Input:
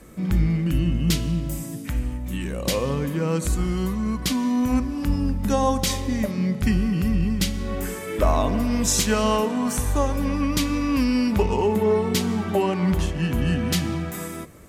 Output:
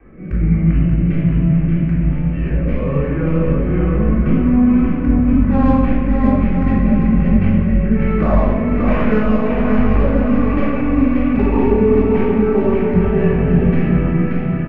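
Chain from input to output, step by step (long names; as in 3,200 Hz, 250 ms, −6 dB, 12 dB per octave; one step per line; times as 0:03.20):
stylus tracing distortion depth 0.3 ms
Butterworth low-pass 2,500 Hz 48 dB per octave
in parallel at −4.5 dB: soft clipping −24 dBFS, distortion −9 dB
on the sum: rotating-speaker cabinet horn 1.2 Hz
on a send: bouncing-ball delay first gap 580 ms, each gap 0.75×, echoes 5
on the sum: rectangular room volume 920 cubic metres, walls mixed, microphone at 3.6 metres
level −4.5 dB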